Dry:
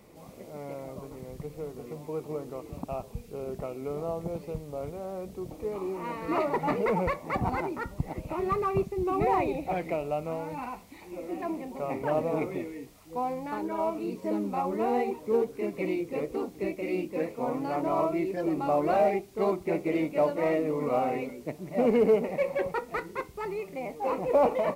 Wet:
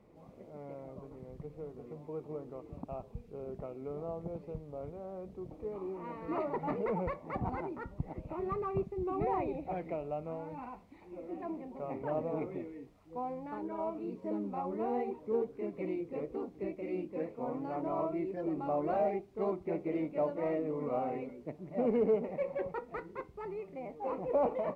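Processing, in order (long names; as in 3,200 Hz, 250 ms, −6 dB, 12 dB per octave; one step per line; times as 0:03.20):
low-pass filter 1,100 Hz 6 dB per octave
level −6 dB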